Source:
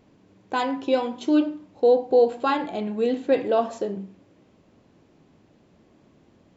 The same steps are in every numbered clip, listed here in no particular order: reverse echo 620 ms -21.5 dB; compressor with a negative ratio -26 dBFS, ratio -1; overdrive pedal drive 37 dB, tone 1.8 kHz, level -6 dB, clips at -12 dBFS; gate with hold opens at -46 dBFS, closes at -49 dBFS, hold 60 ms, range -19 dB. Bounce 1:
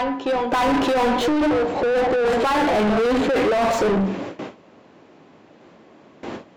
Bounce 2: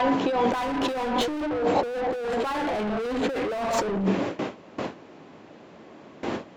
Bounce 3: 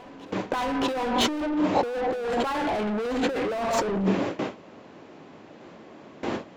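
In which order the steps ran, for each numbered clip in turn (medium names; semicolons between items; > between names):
gate with hold > reverse echo > compressor with a negative ratio > overdrive pedal; reverse echo > gate with hold > overdrive pedal > compressor with a negative ratio; gate with hold > overdrive pedal > compressor with a negative ratio > reverse echo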